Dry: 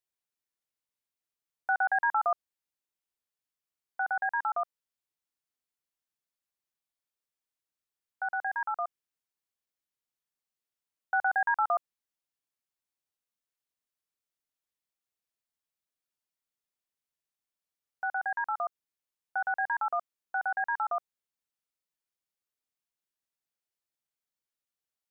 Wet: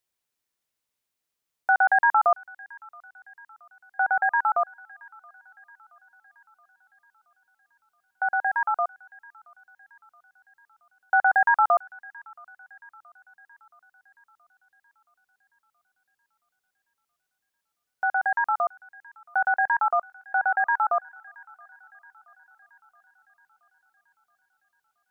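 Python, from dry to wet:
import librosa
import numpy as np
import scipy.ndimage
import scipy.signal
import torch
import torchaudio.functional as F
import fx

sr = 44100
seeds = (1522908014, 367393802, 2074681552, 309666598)

y = fx.echo_wet_highpass(x, sr, ms=674, feedback_pct=56, hz=1700.0, wet_db=-18)
y = y * librosa.db_to_amplitude(7.5)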